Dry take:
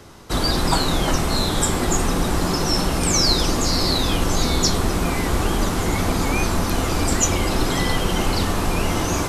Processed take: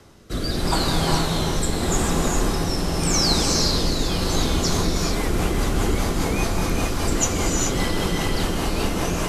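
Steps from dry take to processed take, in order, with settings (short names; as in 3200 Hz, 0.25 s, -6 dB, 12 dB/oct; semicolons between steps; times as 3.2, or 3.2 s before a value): rotary speaker horn 0.85 Hz, later 5 Hz, at 4.18; non-linear reverb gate 0.46 s rising, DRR 0.5 dB; gain -2.5 dB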